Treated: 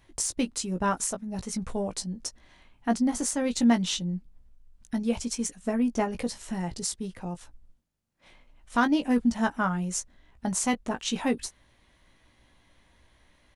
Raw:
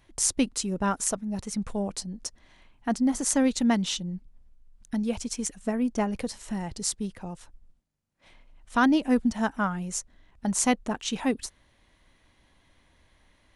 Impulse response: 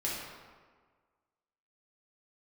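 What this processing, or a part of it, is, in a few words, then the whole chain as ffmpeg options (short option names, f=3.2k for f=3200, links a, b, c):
limiter into clipper: -filter_complex "[0:a]alimiter=limit=-14.5dB:level=0:latency=1:release=279,asoftclip=type=hard:threshold=-16dB,asplit=2[a][b];[b]adelay=17,volume=-7dB[c];[a][c]amix=inputs=2:normalize=0"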